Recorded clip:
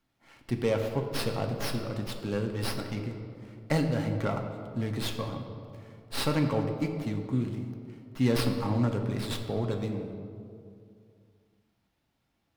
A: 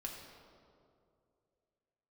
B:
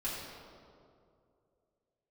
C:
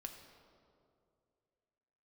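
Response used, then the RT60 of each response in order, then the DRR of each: C; 2.5 s, 2.5 s, 2.4 s; -1.0 dB, -9.0 dB, 3.5 dB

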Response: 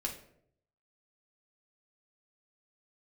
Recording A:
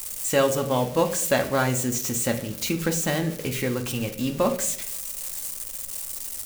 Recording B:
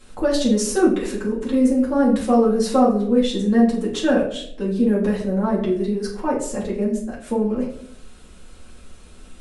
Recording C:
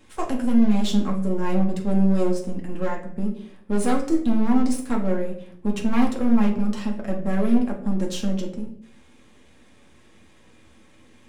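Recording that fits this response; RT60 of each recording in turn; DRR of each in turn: C; 0.70 s, 0.70 s, 0.70 s; 4.5 dB, -7.0 dB, -0.5 dB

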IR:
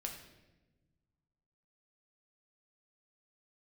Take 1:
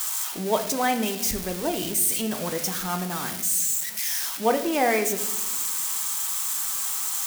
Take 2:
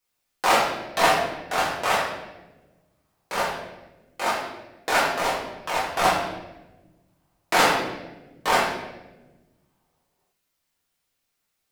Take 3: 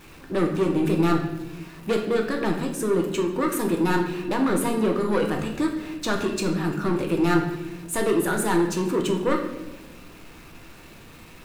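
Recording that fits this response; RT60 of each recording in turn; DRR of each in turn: 3; no single decay rate, no single decay rate, no single decay rate; 7.0 dB, -8.0 dB, 1.5 dB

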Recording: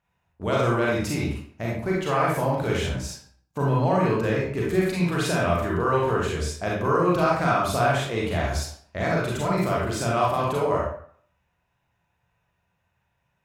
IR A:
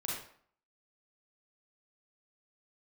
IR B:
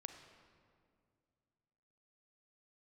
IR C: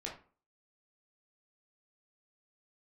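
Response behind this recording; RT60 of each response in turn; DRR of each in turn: A; 0.55 s, 2.2 s, 0.40 s; -5.0 dB, 6.0 dB, -3.0 dB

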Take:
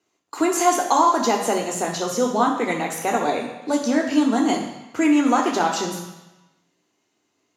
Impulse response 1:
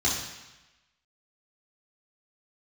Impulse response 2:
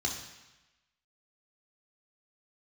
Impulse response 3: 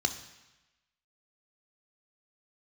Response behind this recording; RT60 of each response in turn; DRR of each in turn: 2; 1.0 s, 1.0 s, 1.0 s; -7.0 dB, -0.5 dB, 7.0 dB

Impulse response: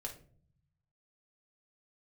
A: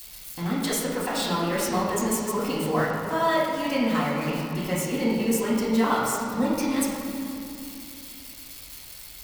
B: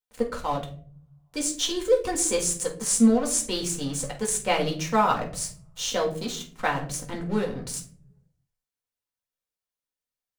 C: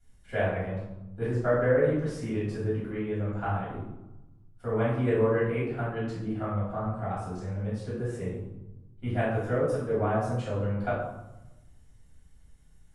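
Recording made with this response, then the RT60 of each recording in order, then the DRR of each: B; 2.6 s, 0.50 s, 0.95 s; -7.0 dB, 0.0 dB, -12.0 dB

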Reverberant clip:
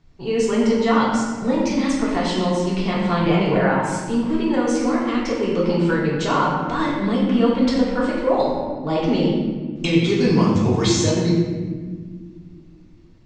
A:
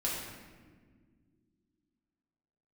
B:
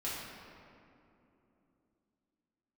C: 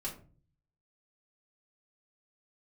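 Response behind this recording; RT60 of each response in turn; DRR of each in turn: A; no single decay rate, 3.0 s, 0.40 s; -6.0 dB, -9.0 dB, -5.0 dB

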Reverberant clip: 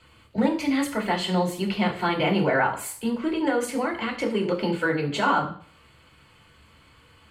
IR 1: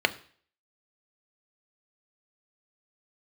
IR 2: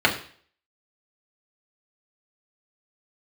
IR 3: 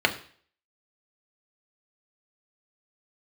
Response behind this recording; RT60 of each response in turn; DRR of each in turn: 2; 0.50 s, 0.50 s, 0.50 s; 9.0 dB, -2.0 dB, 3.0 dB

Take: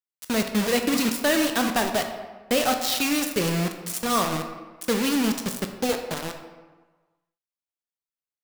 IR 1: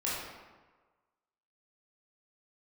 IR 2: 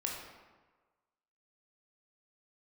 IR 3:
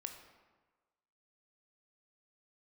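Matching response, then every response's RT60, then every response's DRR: 3; 1.4 s, 1.4 s, 1.4 s; -8.0 dB, -1.5 dB, 5.0 dB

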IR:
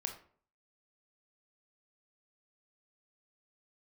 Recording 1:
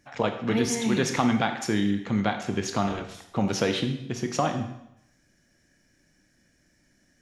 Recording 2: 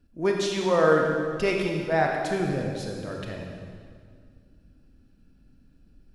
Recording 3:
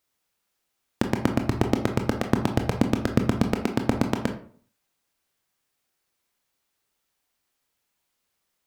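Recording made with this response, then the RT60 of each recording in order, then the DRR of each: 3; 0.80 s, 2.0 s, 0.50 s; 6.0 dB, 0.5 dB, 4.0 dB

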